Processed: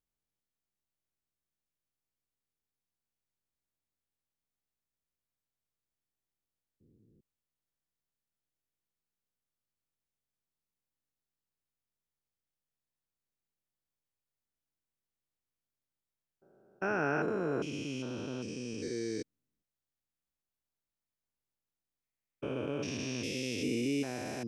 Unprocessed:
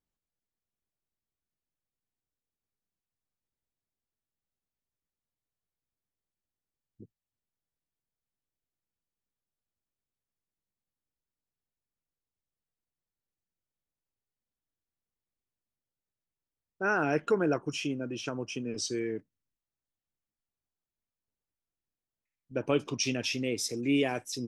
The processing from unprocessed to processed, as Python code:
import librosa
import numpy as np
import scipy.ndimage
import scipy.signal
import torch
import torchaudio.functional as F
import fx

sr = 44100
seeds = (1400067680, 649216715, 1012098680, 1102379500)

y = fx.spec_steps(x, sr, hold_ms=400)